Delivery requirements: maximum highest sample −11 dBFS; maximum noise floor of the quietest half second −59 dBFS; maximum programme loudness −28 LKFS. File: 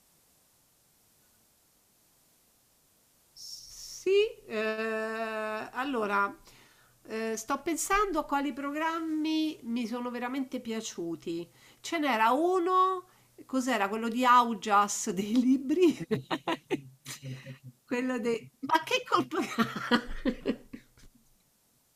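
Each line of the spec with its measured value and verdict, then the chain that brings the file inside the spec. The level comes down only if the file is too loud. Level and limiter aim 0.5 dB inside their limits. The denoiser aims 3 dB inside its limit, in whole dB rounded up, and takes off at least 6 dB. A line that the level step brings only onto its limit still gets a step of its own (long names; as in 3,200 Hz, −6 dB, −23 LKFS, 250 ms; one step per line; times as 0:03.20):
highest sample −10.5 dBFS: out of spec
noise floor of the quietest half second −69 dBFS: in spec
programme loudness −30.0 LKFS: in spec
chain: brickwall limiter −11.5 dBFS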